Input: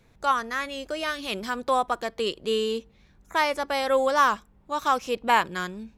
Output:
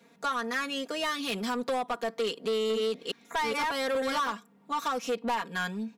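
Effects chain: 2.28–4.32 s: chunks repeated in reverse 417 ms, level -1.5 dB; high-pass 170 Hz 24 dB/octave; comb 4.3 ms, depth 97%; compression 6:1, threshold -22 dBFS, peak gain reduction 12 dB; saturation -24 dBFS, distortion -12 dB

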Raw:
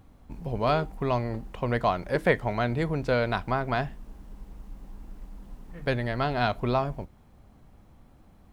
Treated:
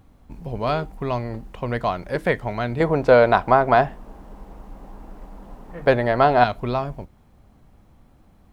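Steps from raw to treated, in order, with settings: 2.80–6.44 s: peaking EQ 710 Hz +12.5 dB 2.6 oct; trim +1.5 dB

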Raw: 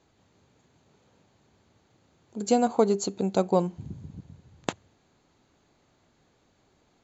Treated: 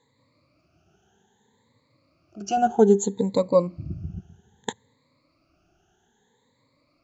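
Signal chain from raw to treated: drifting ripple filter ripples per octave 1, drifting +0.62 Hz, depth 23 dB; 2.57–4.19 s: bass shelf 460 Hz +8 dB; trim -6 dB

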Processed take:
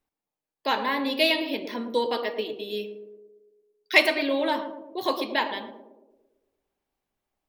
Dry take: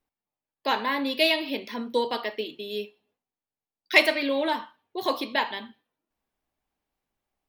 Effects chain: band-passed feedback delay 112 ms, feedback 62%, band-pass 400 Hz, level -6 dB

